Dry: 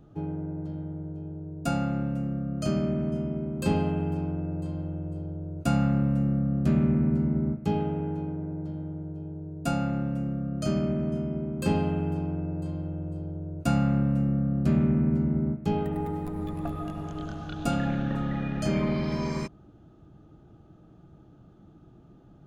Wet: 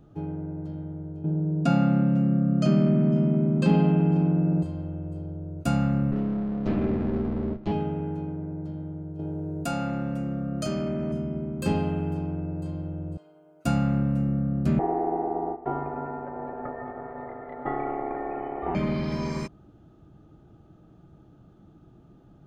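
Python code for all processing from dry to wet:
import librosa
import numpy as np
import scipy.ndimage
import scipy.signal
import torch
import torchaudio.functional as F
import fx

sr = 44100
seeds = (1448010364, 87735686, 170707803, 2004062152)

y = fx.chain(x, sr, fx.lowpass(hz=4500.0, slope=12),
    fx.low_shelf_res(hz=120.0, db=-10.0, q=3.0),
    fx.env_flatten(amount_pct=50), at=(1.24, 4.63))
y = fx.chain(y, sr, fx.lower_of_two(delay_ms=9.8),
    fx.lowpass(hz=4700.0, slope=24), at=(6.11, 7.72))
y = fx.chain(y, sr, fx.low_shelf(hz=230.0, db=-8.0),
    fx.env_flatten(amount_pct=70), at=(9.19, 11.12))
y = fx.chain(y, sr, fx.highpass(hz=1100.0, slope=12),
    fx.comb(ms=6.7, depth=1.0), at=(13.17, 13.65))
y = fx.chain(y, sr, fx.cheby2_lowpass(hz=6600.0, order=4, stop_db=70),
    fx.ring_mod(carrier_hz=560.0), at=(14.79, 18.75))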